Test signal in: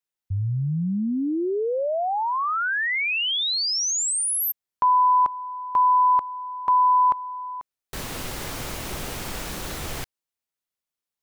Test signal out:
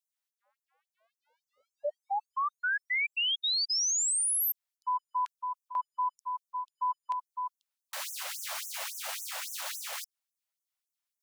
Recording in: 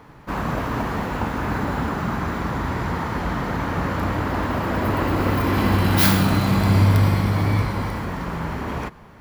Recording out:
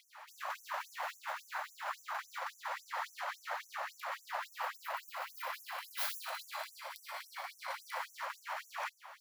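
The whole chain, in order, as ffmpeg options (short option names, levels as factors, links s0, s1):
-af "areverse,acompressor=threshold=0.0501:ratio=16:attack=0.39:release=115:knee=1:detection=rms,areverse,afftfilt=real='re*gte(b*sr/1024,500*pow(5900/500,0.5+0.5*sin(2*PI*3.6*pts/sr)))':imag='im*gte(b*sr/1024,500*pow(5900/500,0.5+0.5*sin(2*PI*3.6*pts/sr)))':win_size=1024:overlap=0.75"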